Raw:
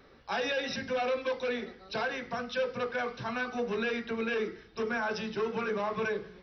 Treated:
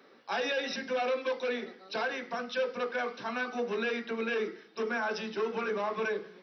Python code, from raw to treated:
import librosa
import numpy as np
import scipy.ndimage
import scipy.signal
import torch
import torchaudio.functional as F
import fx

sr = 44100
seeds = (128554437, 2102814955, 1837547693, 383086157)

y = scipy.signal.sosfilt(scipy.signal.butter(4, 210.0, 'highpass', fs=sr, output='sos'), x)